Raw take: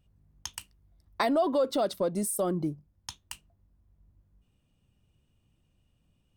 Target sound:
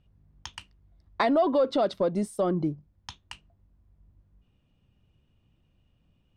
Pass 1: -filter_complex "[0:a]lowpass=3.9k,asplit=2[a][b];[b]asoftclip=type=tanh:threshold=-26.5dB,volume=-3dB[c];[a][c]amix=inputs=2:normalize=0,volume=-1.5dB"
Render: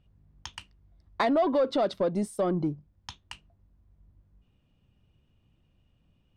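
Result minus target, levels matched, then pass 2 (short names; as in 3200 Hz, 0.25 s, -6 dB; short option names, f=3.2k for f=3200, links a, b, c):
soft clip: distortion +14 dB
-filter_complex "[0:a]lowpass=3.9k,asplit=2[a][b];[b]asoftclip=type=tanh:threshold=-16.5dB,volume=-3dB[c];[a][c]amix=inputs=2:normalize=0,volume=-1.5dB"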